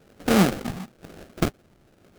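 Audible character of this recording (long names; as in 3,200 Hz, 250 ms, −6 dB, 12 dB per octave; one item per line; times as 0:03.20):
phaser sweep stages 8, 1 Hz, lowest notch 480–3,100 Hz
aliases and images of a low sample rate 1,000 Hz, jitter 20%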